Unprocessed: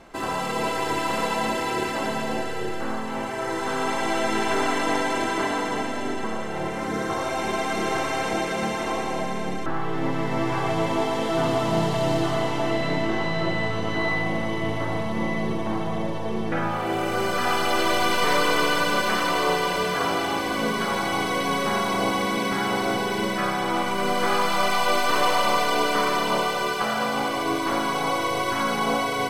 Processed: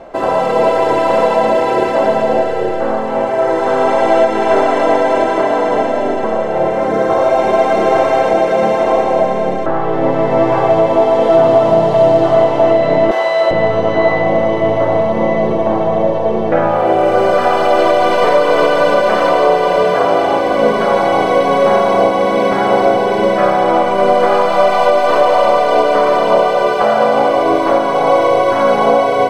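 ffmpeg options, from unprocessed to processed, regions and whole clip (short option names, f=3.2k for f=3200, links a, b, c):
-filter_complex "[0:a]asettb=1/sr,asplit=3[a][b][c];[a]atrim=end=13.114[d];[b]atrim=start=13.11:end=13.51,asetpts=PTS-STARTPTS,afade=t=in:d=0.004:c=qsin,afade=t=out:st=0.396:d=0.004:c=qsin,highpass=580,aemphasis=mode=production:type=50fm,asplit=2[e][f];[f]adelay=44,volume=-11dB[g];[e][g]amix=inputs=2:normalize=0,atrim=end_sample=17640[h];[c]atrim=start=13.506[i];[d][h]acrossfade=d=0.004:c1=hsin:c2=qsin[j];[j][i]acrossfade=d=0.004:c1=qsin:c2=hsin,lowpass=f=2.9k:p=1,equalizer=f=590:t=o:w=0.97:g=15,alimiter=limit=-7dB:level=0:latency=1:release=365,volume=6dB"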